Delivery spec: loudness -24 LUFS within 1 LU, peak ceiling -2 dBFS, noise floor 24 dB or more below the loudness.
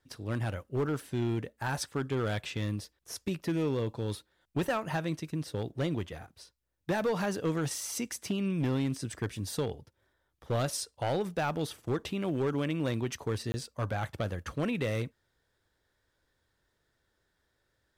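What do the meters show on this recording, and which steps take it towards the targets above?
clipped samples 1.7%; clipping level -24.5 dBFS; dropouts 1; longest dropout 20 ms; loudness -33.5 LUFS; peak level -24.5 dBFS; loudness target -24.0 LUFS
-> clip repair -24.5 dBFS; interpolate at 13.52 s, 20 ms; trim +9.5 dB

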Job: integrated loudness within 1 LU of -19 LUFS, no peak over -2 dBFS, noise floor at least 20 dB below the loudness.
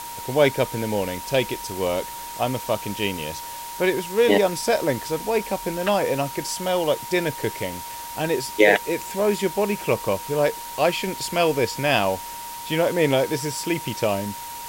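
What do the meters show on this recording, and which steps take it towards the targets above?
steady tone 940 Hz; tone level -34 dBFS; noise floor -35 dBFS; noise floor target -44 dBFS; loudness -23.5 LUFS; peak level -2.0 dBFS; loudness target -19.0 LUFS
-> band-stop 940 Hz, Q 30; noise reduction 9 dB, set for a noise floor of -35 dBFS; trim +4.5 dB; peak limiter -2 dBFS

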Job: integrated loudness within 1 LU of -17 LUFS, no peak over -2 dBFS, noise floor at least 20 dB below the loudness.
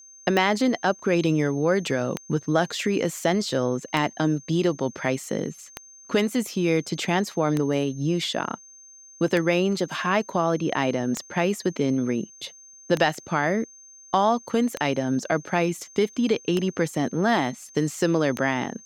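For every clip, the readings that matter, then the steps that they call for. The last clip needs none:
clicks found 11; steady tone 6.3 kHz; tone level -46 dBFS; loudness -24.5 LUFS; peak level -8.0 dBFS; loudness target -17.0 LUFS
-> de-click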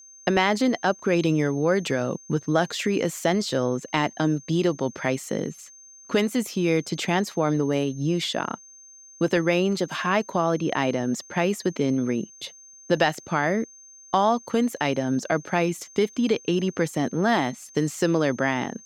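clicks found 0; steady tone 6.3 kHz; tone level -46 dBFS
-> band-stop 6.3 kHz, Q 30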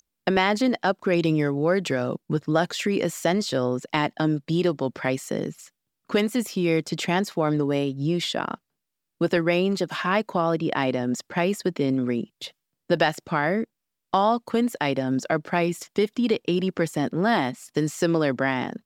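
steady tone not found; loudness -24.5 LUFS; peak level -8.0 dBFS; loudness target -17.0 LUFS
-> trim +7.5 dB; peak limiter -2 dBFS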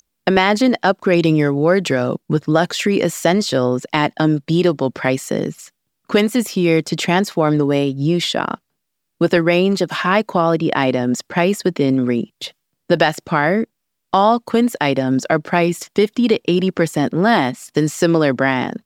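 loudness -17.0 LUFS; peak level -2.0 dBFS; noise floor -74 dBFS

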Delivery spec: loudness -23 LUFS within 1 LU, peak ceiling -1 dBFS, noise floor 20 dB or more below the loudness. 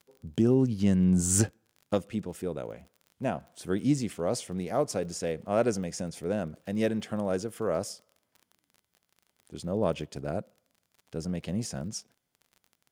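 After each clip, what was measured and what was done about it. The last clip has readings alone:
tick rate 32 per s; loudness -30.0 LUFS; peak level -11.5 dBFS; loudness target -23.0 LUFS
-> de-click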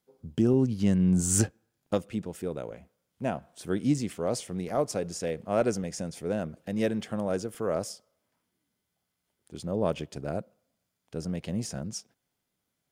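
tick rate 0.23 per s; loudness -30.0 LUFS; peak level -11.5 dBFS; loudness target -23.0 LUFS
-> trim +7 dB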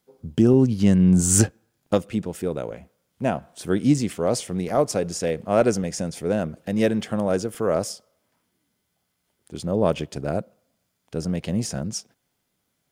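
loudness -23.0 LUFS; peak level -4.5 dBFS; noise floor -75 dBFS

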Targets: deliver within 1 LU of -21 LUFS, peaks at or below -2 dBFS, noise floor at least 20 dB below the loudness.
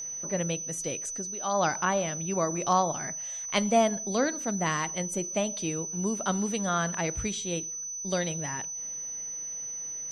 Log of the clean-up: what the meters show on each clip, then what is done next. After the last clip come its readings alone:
tick rate 22 per s; steady tone 6 kHz; tone level -34 dBFS; loudness -29.0 LUFS; peak level -9.5 dBFS; loudness target -21.0 LUFS
-> de-click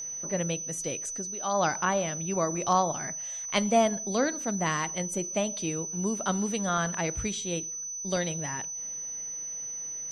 tick rate 0 per s; steady tone 6 kHz; tone level -34 dBFS
-> band-stop 6 kHz, Q 30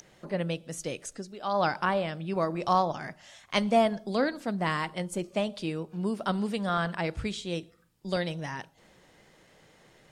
steady tone not found; loudness -30.5 LUFS; peak level -10.5 dBFS; loudness target -21.0 LUFS
-> trim +9.5 dB; peak limiter -2 dBFS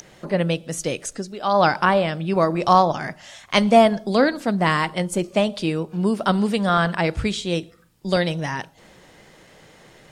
loudness -21.0 LUFS; peak level -2.0 dBFS; noise floor -51 dBFS

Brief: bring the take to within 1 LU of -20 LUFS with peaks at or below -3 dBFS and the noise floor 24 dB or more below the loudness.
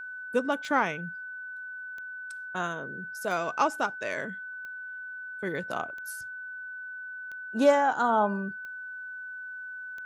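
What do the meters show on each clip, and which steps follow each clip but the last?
clicks found 8; steady tone 1.5 kHz; tone level -37 dBFS; loudness -31.0 LUFS; peak level -10.5 dBFS; loudness target -20.0 LUFS
-> de-click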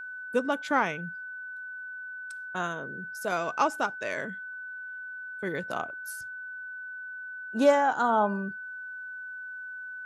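clicks found 0; steady tone 1.5 kHz; tone level -37 dBFS
-> band-stop 1.5 kHz, Q 30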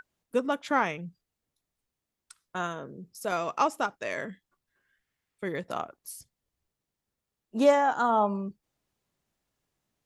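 steady tone not found; loudness -28.5 LUFS; peak level -10.5 dBFS; loudness target -20.0 LUFS
-> trim +8.5 dB; peak limiter -3 dBFS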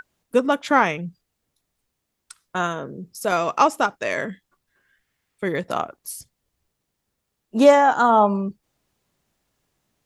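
loudness -20.5 LUFS; peak level -3.0 dBFS; noise floor -78 dBFS

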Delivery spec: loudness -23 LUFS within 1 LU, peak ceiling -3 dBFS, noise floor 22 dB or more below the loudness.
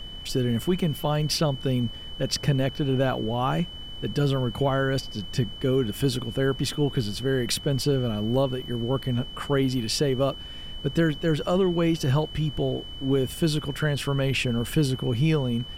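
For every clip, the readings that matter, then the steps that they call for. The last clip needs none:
steady tone 3 kHz; tone level -39 dBFS; noise floor -39 dBFS; noise floor target -48 dBFS; loudness -26.0 LUFS; peak level -12.5 dBFS; loudness target -23.0 LUFS
-> band-stop 3 kHz, Q 30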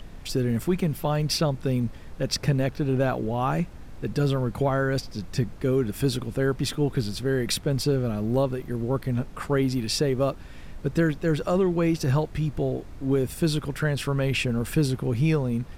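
steady tone not found; noise floor -41 dBFS; noise floor target -48 dBFS
-> noise print and reduce 7 dB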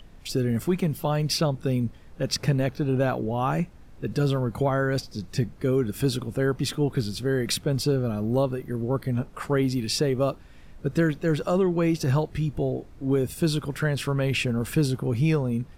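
noise floor -47 dBFS; noise floor target -48 dBFS
-> noise print and reduce 6 dB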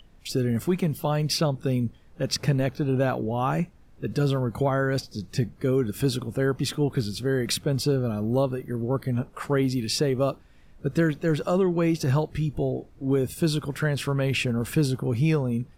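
noise floor -52 dBFS; loudness -26.0 LUFS; peak level -13.0 dBFS; loudness target -23.0 LUFS
-> trim +3 dB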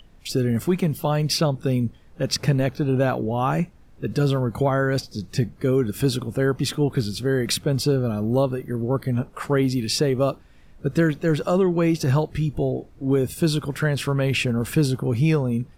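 loudness -23.0 LUFS; peak level -10.0 dBFS; noise floor -49 dBFS

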